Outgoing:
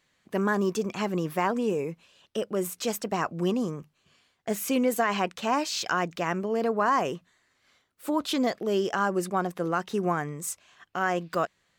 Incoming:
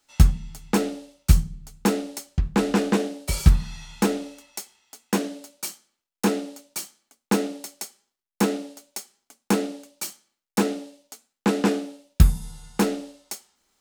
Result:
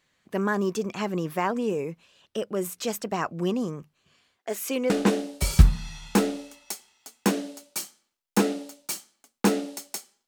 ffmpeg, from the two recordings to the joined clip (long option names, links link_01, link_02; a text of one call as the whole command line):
ffmpeg -i cue0.wav -i cue1.wav -filter_complex "[0:a]asettb=1/sr,asplit=3[link_01][link_02][link_03];[link_01]atrim=end=4.384[link_04];[link_02]atrim=start=4.38:end=4.9,asetpts=PTS-STARTPTS,afade=type=in:duration=0.004:curve=qsin,afade=type=out:start_time=0.516:duration=0.004:curve=qsin,highpass=frequency=280:width=0.5412,highpass=frequency=280:width=1.3066[link_05];[link_03]atrim=start=4.896[link_06];[link_04][link_05]acrossfade=duration=0.004:curve1=hsin:curve2=qsin[link_07];[link_07][link_06]acrossfade=duration=0.004:curve1=qsin:curve2=hsin,apad=whole_dur=10.27,atrim=end=10.27,atrim=end=4.902[link_08];[1:a]atrim=start=2.768:end=8.14[link_09];[link_08][link_09]acrossfade=duration=0.004:curve1=hsin:curve2=hsin" out.wav